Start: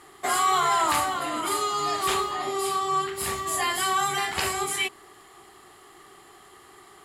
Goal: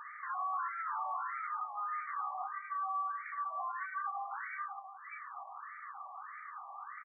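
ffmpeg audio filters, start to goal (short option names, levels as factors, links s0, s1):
-filter_complex "[0:a]asplit=2[s0][s1];[s1]aecho=0:1:105|210|315|420:0.422|0.135|0.0432|0.0138[s2];[s0][s2]amix=inputs=2:normalize=0,acompressor=threshold=0.0141:ratio=6,asoftclip=type=tanh:threshold=0.0106,highpass=590,afftfilt=real='re*between(b*sr/1024,830*pow(1700/830,0.5+0.5*sin(2*PI*1.6*pts/sr))/1.41,830*pow(1700/830,0.5+0.5*sin(2*PI*1.6*pts/sr))*1.41)':imag='im*between(b*sr/1024,830*pow(1700/830,0.5+0.5*sin(2*PI*1.6*pts/sr))/1.41,830*pow(1700/830,0.5+0.5*sin(2*PI*1.6*pts/sr))*1.41)':win_size=1024:overlap=0.75,volume=2.66"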